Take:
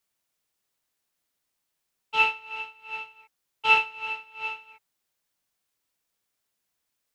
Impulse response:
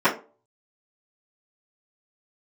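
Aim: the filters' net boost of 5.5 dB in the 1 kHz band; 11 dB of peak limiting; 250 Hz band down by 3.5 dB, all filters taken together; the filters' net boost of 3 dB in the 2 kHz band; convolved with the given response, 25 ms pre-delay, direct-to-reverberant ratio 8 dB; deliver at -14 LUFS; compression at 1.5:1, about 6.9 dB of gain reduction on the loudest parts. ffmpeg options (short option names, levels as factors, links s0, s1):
-filter_complex "[0:a]equalizer=f=250:t=o:g=-5.5,equalizer=f=1000:t=o:g=6,equalizer=f=2000:t=o:g=4,acompressor=threshold=0.0282:ratio=1.5,alimiter=limit=0.0794:level=0:latency=1,asplit=2[s0][s1];[1:a]atrim=start_sample=2205,adelay=25[s2];[s1][s2]afir=irnorm=-1:irlink=0,volume=0.0422[s3];[s0][s3]amix=inputs=2:normalize=0,volume=9.44"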